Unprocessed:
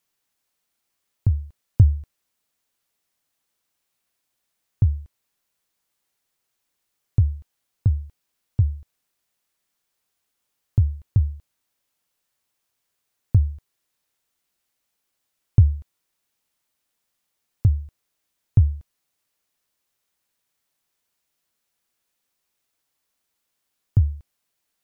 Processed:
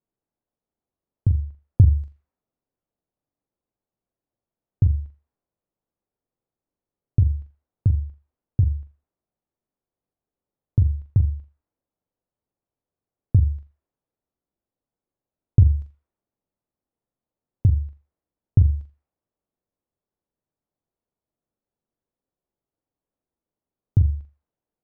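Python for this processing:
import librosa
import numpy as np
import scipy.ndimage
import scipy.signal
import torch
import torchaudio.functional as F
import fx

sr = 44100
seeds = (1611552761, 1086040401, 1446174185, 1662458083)

y = fx.env_lowpass(x, sr, base_hz=580.0, full_db=-15.0)
y = fx.room_flutter(y, sr, wall_m=7.2, rt60_s=0.28)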